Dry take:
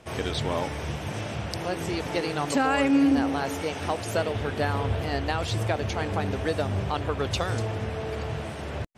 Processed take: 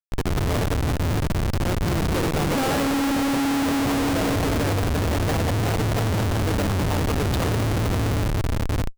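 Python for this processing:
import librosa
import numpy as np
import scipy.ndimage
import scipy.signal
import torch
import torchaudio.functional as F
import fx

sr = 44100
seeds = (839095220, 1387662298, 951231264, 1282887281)

y = fx.echo_heads(x, sr, ms=173, heads='all three', feedback_pct=59, wet_db=-7.5)
y = fx.schmitt(y, sr, flips_db=-23.5)
y = y * 10.0 ** (2.0 / 20.0)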